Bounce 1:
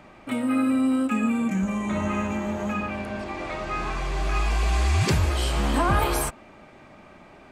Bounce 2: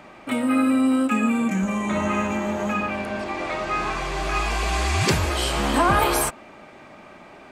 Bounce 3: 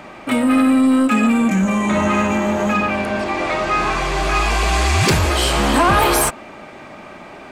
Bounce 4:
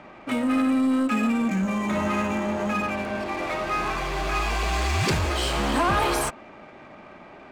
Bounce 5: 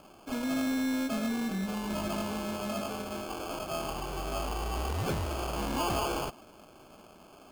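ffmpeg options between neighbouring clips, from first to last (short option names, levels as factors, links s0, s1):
-af "lowshelf=f=140:g=-10.5,volume=1.78"
-af "asoftclip=type=tanh:threshold=0.15,volume=2.51"
-af "adynamicsmooth=sensitivity=6:basefreq=3300,volume=0.398"
-af "acrusher=samples=23:mix=1:aa=0.000001,volume=0.376"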